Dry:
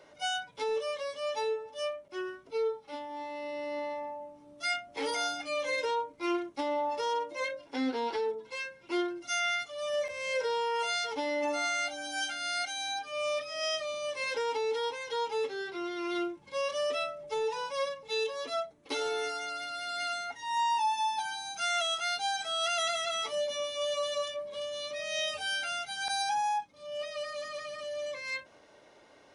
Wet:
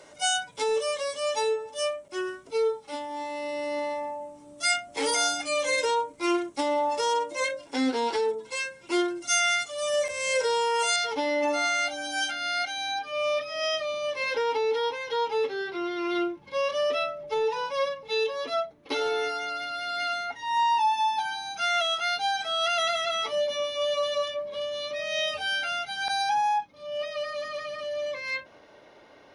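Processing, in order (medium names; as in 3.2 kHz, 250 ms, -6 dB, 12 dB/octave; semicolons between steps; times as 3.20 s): peaking EQ 8.1 kHz +13.5 dB 0.75 oct, from 10.96 s -2.5 dB, from 12.31 s -13.5 dB; trim +5.5 dB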